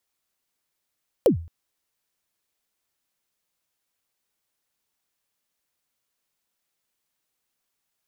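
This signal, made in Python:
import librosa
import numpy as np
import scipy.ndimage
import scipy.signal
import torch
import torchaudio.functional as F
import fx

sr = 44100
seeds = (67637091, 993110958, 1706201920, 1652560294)

y = fx.drum_kick(sr, seeds[0], length_s=0.22, level_db=-10, start_hz=580.0, end_hz=83.0, sweep_ms=109.0, decay_s=0.41, click=True)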